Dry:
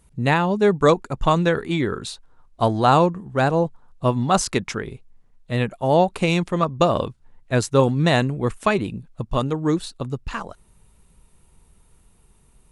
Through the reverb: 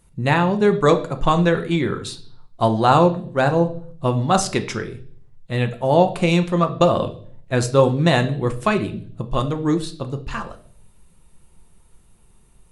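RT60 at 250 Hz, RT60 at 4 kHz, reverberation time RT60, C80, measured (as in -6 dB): 0.75 s, 0.50 s, 0.50 s, 18.0 dB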